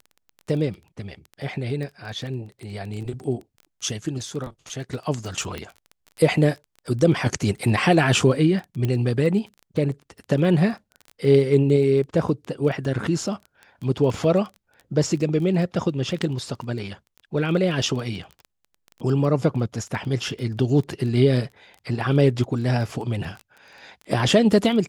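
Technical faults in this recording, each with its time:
crackle 16 per s -31 dBFS
5.58 s: pop -17 dBFS
8.85 s: pop -14 dBFS

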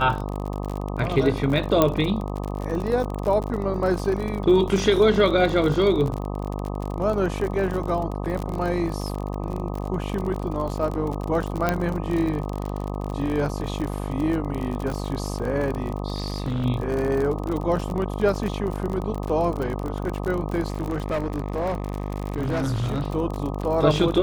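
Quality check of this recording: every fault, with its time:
buzz 50 Hz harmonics 25 -29 dBFS
crackle 44 per s -27 dBFS
1.82 s: pop -4 dBFS
11.69 s: pop -8 dBFS
16.14–16.66 s: clipped -21.5 dBFS
20.68–23.02 s: clipped -21 dBFS

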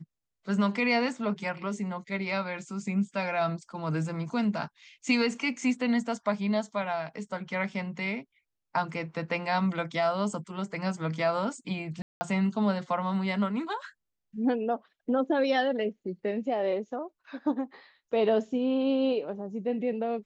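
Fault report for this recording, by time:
12.02–12.21 s: dropout 190 ms

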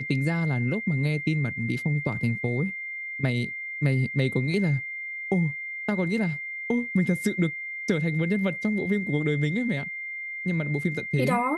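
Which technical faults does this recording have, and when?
whine 2.1 kHz -32 dBFS

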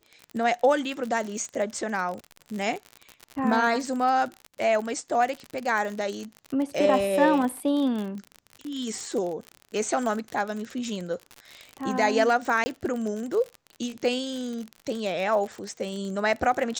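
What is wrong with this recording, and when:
crackle 54 per s -30 dBFS
12.64–12.66 s: dropout 20 ms

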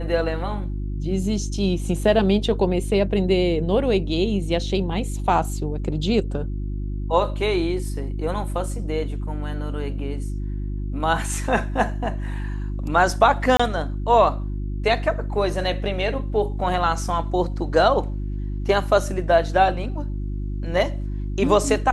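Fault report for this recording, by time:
hum 50 Hz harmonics 7 -27 dBFS
13.57–13.60 s: dropout 25 ms

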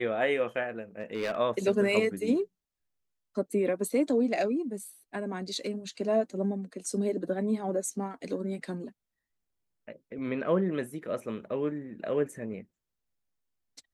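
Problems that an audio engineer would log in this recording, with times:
1.00–1.37 s: clipped -26.5 dBFS

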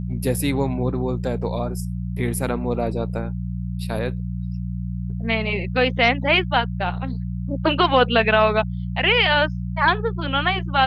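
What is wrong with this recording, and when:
hum 60 Hz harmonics 3 -27 dBFS

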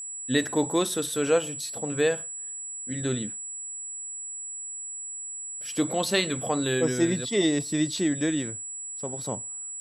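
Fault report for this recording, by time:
whine 7.8 kHz -34 dBFS

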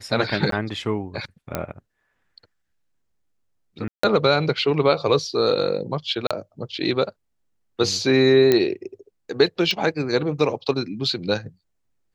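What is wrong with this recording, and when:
0.51–0.52 s: dropout 13 ms
1.55 s: pop -10 dBFS
3.88–4.03 s: dropout 154 ms
6.27–6.31 s: dropout 36 ms
8.52 s: pop -5 dBFS
9.71 s: pop -11 dBFS

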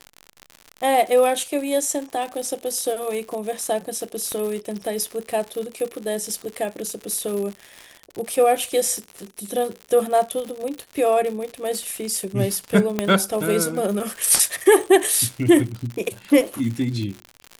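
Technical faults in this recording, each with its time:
crackle 110 per s -28 dBFS
4.32 s: pop -15 dBFS
12.99 s: pop -7 dBFS

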